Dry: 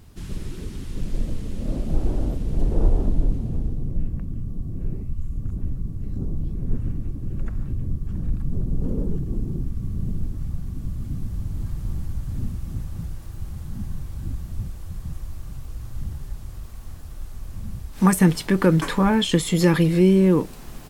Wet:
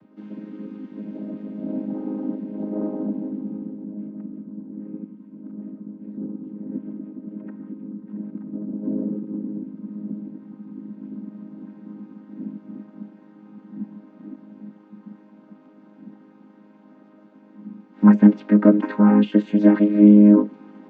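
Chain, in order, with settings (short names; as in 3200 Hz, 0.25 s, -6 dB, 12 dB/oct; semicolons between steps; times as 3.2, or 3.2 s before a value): chord vocoder major triad, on G#3; LPF 2100 Hz 12 dB/oct; gain +4.5 dB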